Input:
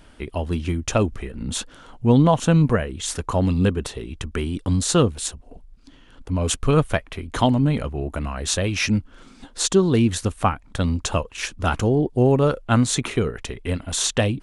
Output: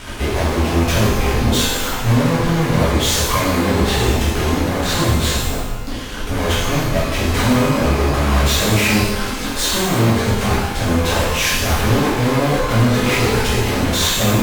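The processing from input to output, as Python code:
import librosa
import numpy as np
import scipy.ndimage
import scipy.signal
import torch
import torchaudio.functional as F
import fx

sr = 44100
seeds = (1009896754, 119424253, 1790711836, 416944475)

y = fx.env_lowpass_down(x, sr, base_hz=310.0, full_db=-13.0)
y = fx.fuzz(y, sr, gain_db=46.0, gate_db=-47.0)
y = fx.rev_shimmer(y, sr, seeds[0], rt60_s=1.0, semitones=12, shimmer_db=-8, drr_db=-9.0)
y = y * 10.0 ** (-11.5 / 20.0)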